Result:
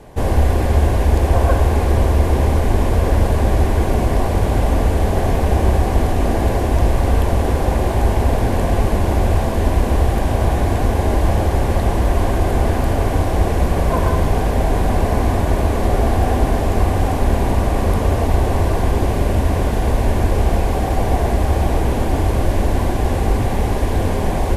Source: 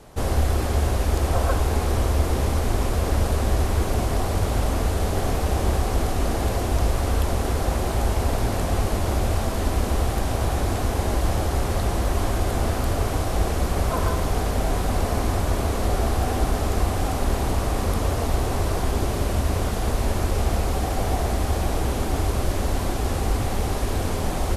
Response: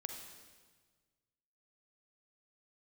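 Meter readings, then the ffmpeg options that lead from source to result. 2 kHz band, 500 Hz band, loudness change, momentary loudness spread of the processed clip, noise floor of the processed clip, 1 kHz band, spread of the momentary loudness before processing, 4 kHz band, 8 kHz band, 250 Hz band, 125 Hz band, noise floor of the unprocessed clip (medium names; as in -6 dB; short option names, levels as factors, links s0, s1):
+5.0 dB, +7.0 dB, +6.5 dB, 2 LU, -19 dBFS, +6.0 dB, 2 LU, +0.5 dB, -1.0 dB, +7.0 dB, +7.0 dB, -26 dBFS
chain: -filter_complex "[0:a]bandreject=f=1300:w=5.2,asplit=2[s0][s1];[1:a]atrim=start_sample=2205,lowpass=3000[s2];[s1][s2]afir=irnorm=-1:irlink=0,volume=1.58[s3];[s0][s3]amix=inputs=2:normalize=0"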